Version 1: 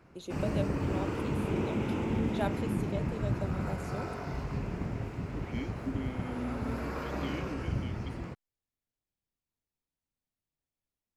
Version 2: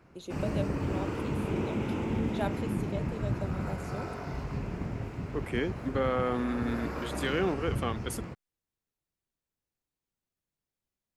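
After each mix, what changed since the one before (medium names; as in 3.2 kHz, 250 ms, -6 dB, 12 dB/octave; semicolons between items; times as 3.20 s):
second voice: remove vowel filter i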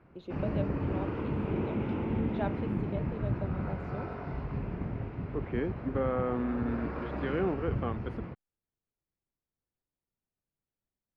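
second voice: add low-pass 1.5 kHz 6 dB/octave; master: add distance through air 360 m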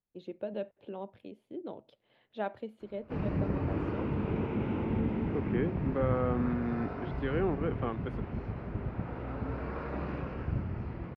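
background: entry +2.80 s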